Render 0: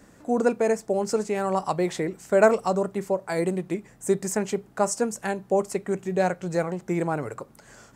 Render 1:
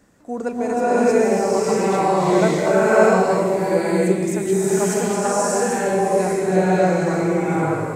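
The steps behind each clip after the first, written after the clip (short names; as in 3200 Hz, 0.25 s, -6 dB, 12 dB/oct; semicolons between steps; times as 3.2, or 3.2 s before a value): bloom reverb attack 0.62 s, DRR -11.5 dB; gain -4 dB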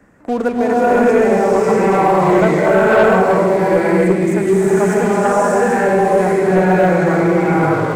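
resonant high shelf 2800 Hz -9.5 dB, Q 1.5; sample leveller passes 2; three-band squash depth 40%; gain -2 dB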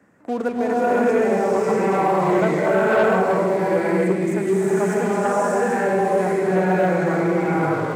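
HPF 110 Hz 12 dB/oct; gain -6 dB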